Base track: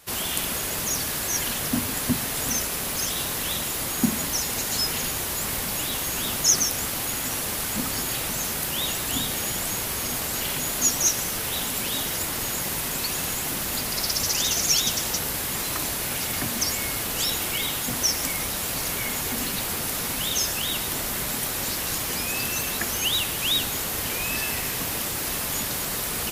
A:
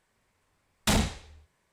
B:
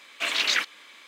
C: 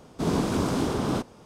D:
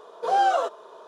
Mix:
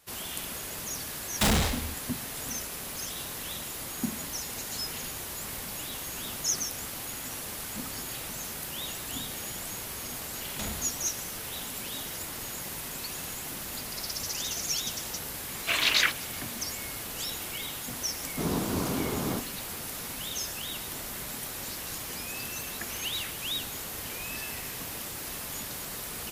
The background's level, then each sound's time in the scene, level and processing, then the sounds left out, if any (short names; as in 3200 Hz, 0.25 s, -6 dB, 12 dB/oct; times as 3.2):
base track -9.5 dB
0.54 add A -3 dB + sample leveller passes 5
9.72 add A -7.5 dB + compressor 3:1, threshold -28 dBFS
15.47 add B
18.18 add C -5 dB
22.68 add B -17 dB + soft clip -19.5 dBFS
not used: D